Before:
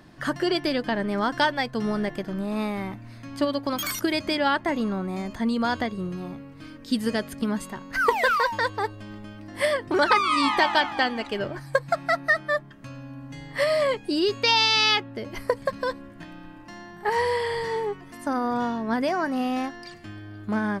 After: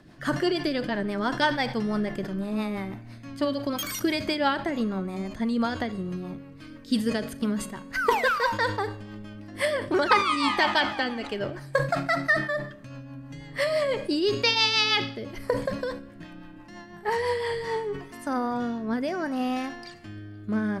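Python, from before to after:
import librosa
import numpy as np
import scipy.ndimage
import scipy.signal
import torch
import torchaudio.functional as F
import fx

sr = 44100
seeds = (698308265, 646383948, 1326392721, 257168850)

y = fx.rotary_switch(x, sr, hz=6.0, then_hz=0.65, switch_at_s=17.25)
y = fx.rev_schroeder(y, sr, rt60_s=0.81, comb_ms=30, drr_db=17.5)
y = fx.sustainer(y, sr, db_per_s=100.0)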